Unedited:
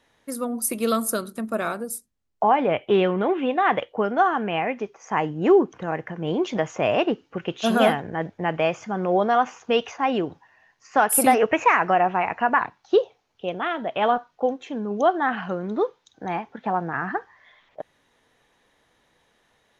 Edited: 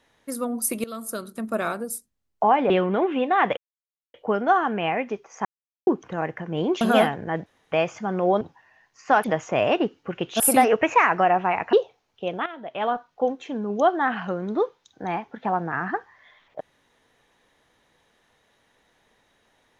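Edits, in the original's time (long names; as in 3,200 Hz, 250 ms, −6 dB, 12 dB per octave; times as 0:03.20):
0:00.84–0:01.52: fade in, from −20 dB
0:02.70–0:02.97: remove
0:03.84: splice in silence 0.57 s
0:05.15–0:05.57: silence
0:06.51–0:07.67: move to 0:11.10
0:08.32–0:08.58: fill with room tone
0:09.27–0:10.27: remove
0:12.43–0:12.94: remove
0:13.67–0:14.49: fade in, from −13 dB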